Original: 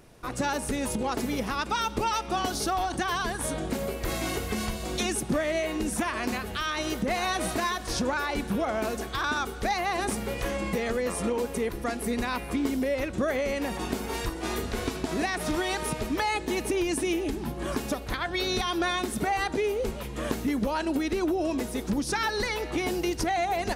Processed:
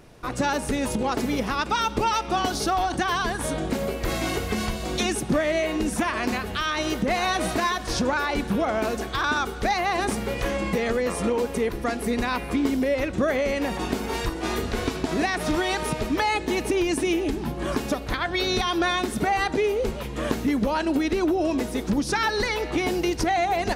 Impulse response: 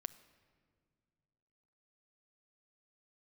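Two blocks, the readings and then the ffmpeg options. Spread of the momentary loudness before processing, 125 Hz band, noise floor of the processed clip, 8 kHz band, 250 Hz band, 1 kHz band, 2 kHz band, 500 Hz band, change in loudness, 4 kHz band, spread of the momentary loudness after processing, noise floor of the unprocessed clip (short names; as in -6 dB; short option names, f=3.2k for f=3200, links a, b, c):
4 LU, +4.0 dB, -34 dBFS, +1.0 dB, +4.0 dB, +4.0 dB, +4.0 dB, +4.0 dB, +4.0 dB, +3.5 dB, 4 LU, -38 dBFS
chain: -filter_complex "[0:a]asplit=2[a][b];[1:a]atrim=start_sample=2205,lowpass=7.6k[c];[b][c]afir=irnorm=-1:irlink=0,volume=-1dB[d];[a][d]amix=inputs=2:normalize=0"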